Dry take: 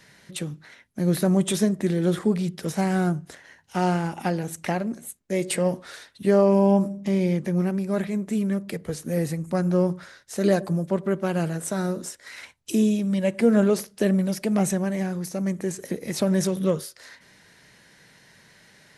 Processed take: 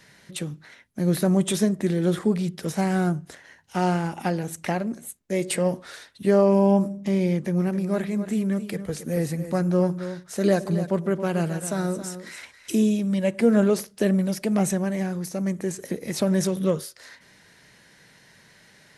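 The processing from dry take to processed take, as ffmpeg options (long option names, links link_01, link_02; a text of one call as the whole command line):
ffmpeg -i in.wav -filter_complex "[0:a]asettb=1/sr,asplit=3[link_01][link_02][link_03];[link_01]atrim=end=7.394[link_04];[link_02]atrim=start=7.39:end=12.87,asetpts=PTS-STARTPTS,afade=type=in:duration=0.004:curve=qsin,afade=type=out:start_time=5.476:duration=0.004:curve=qsin,aecho=1:1:272:0.266,atrim=end_sample=241668[link_05];[link_03]atrim=start=12.866[link_06];[link_04][link_05]acrossfade=duration=0.004:curve1=hsin:curve2=qsin[link_07];[link_07][link_06]acrossfade=duration=0.004:curve1=qsin:curve2=hsin" out.wav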